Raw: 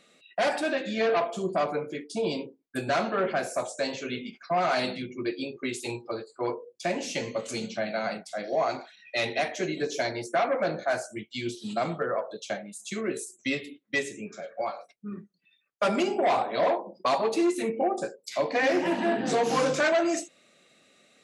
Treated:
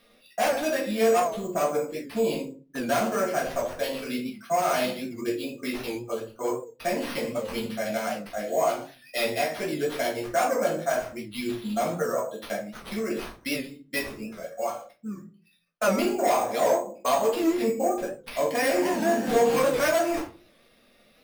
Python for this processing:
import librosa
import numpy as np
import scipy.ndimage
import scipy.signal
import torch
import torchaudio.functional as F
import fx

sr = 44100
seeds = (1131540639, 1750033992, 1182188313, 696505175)

y = fx.sample_hold(x, sr, seeds[0], rate_hz=7400.0, jitter_pct=0)
y = fx.room_shoebox(y, sr, seeds[1], volume_m3=160.0, walls='furnished', distance_m=1.7)
y = fx.record_warp(y, sr, rpm=78.0, depth_cents=100.0)
y = y * 10.0 ** (-3.0 / 20.0)